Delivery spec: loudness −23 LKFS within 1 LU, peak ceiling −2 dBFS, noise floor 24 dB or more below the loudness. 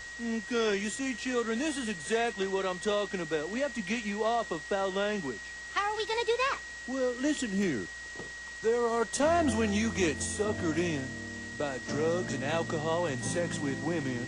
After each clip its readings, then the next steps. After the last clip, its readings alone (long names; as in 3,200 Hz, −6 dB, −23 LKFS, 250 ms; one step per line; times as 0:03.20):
interfering tone 1,900 Hz; level of the tone −41 dBFS; background noise floor −43 dBFS; target noise floor −55 dBFS; integrated loudness −31.0 LKFS; sample peak −18.0 dBFS; target loudness −23.0 LKFS
→ notch filter 1,900 Hz, Q 30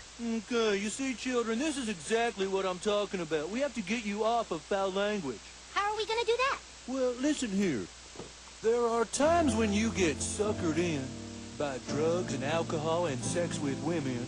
interfering tone none found; background noise floor −50 dBFS; target noise floor −56 dBFS
→ noise reduction from a noise print 6 dB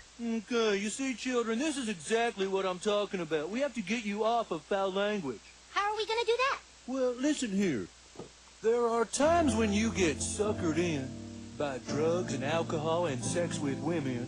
background noise floor −56 dBFS; integrated loudness −31.5 LKFS; sample peak −18.5 dBFS; target loudness −23.0 LKFS
→ level +8.5 dB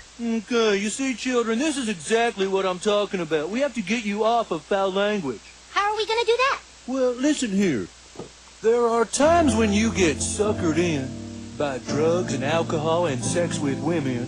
integrated loudness −23.0 LKFS; sample peak −10.0 dBFS; background noise floor −47 dBFS